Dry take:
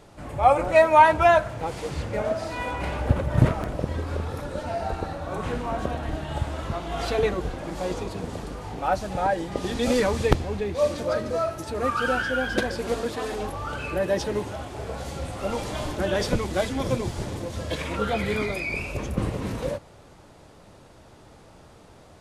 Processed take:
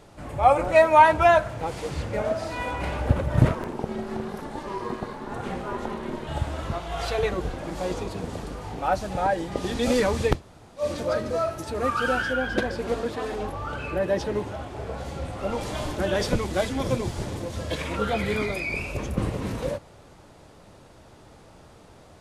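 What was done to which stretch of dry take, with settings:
3.55–6.27 s: ring modulator 300 Hz
6.78–7.32 s: peaking EQ 260 Hz -11.5 dB
10.35–10.83 s: room tone, crossfade 0.16 s
12.33–15.61 s: treble shelf 4.2 kHz -8 dB

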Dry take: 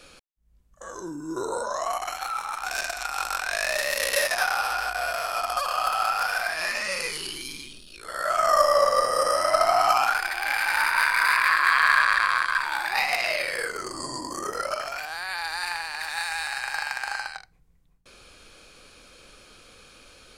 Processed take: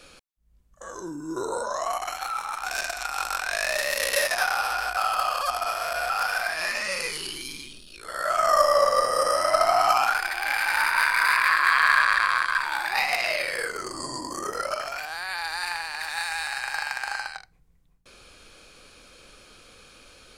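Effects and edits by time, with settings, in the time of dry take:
4.97–6.10 s: reverse

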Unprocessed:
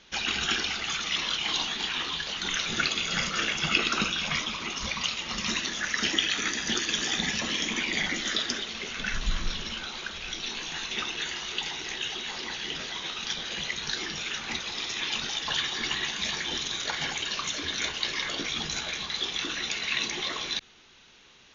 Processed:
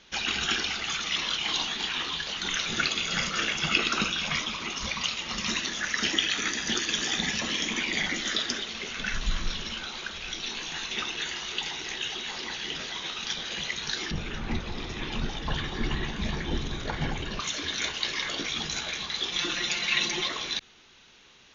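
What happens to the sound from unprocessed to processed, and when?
14.11–17.40 s: tilt EQ -4.5 dB/octave
19.32–20.27 s: comb 5.7 ms, depth 90%

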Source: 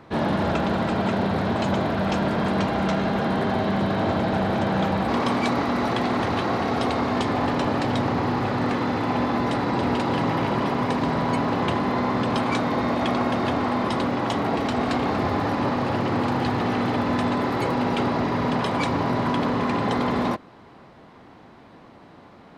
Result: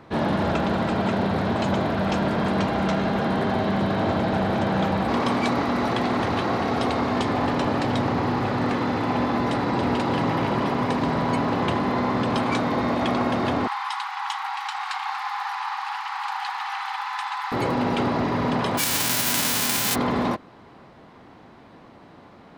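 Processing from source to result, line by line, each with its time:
13.67–17.52 s: brick-wall FIR high-pass 750 Hz
18.77–19.94 s: formants flattened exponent 0.1

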